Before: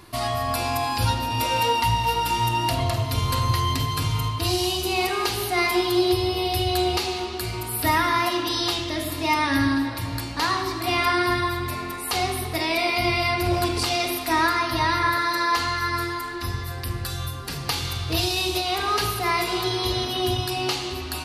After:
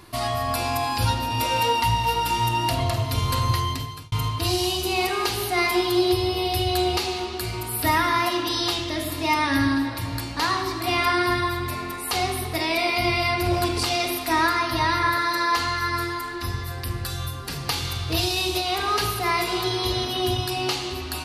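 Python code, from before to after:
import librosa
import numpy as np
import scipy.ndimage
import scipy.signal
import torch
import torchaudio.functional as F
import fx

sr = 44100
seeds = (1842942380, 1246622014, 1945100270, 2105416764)

y = fx.edit(x, sr, fx.fade_out_span(start_s=3.53, length_s=0.59), tone=tone)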